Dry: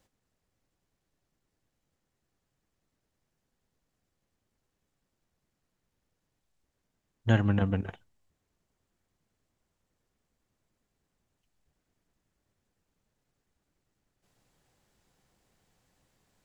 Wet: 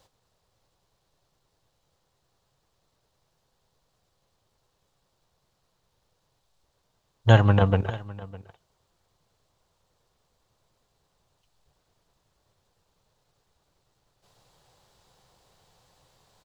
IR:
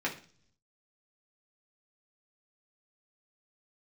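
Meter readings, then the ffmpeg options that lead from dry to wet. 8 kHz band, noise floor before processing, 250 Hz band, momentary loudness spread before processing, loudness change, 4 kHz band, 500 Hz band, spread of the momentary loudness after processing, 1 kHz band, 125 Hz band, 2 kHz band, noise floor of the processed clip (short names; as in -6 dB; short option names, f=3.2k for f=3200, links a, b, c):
n/a, -83 dBFS, +2.5 dB, 12 LU, +7.0 dB, +10.0 dB, +10.5 dB, 19 LU, +12.0 dB, +8.0 dB, +7.0 dB, -74 dBFS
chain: -filter_complex "[0:a]equalizer=f=125:t=o:w=1:g=4,equalizer=f=250:t=o:w=1:g=-8,equalizer=f=500:t=o:w=1:g=5,equalizer=f=1k:t=o:w=1:g=7,equalizer=f=2k:t=o:w=1:g=-4,equalizer=f=4k:t=o:w=1:g=8,asplit=2[a][b];[b]aecho=0:1:606:0.1[c];[a][c]amix=inputs=2:normalize=0,volume=6dB"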